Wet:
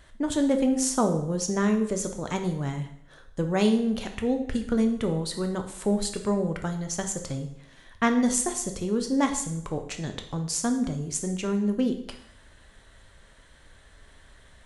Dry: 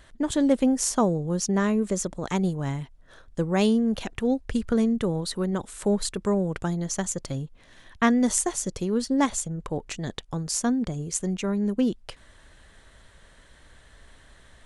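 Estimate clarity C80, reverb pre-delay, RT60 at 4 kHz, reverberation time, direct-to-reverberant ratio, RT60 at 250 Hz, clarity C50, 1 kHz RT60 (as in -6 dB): 12.5 dB, 5 ms, 0.65 s, 0.70 s, 5.0 dB, 0.75 s, 9.5 dB, 0.70 s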